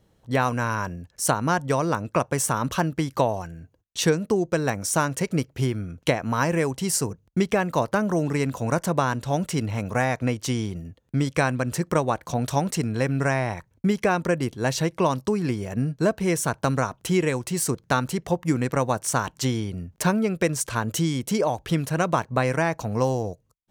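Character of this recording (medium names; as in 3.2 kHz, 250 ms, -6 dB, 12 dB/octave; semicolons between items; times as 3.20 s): noise floor -65 dBFS; spectral tilt -5.0 dB/octave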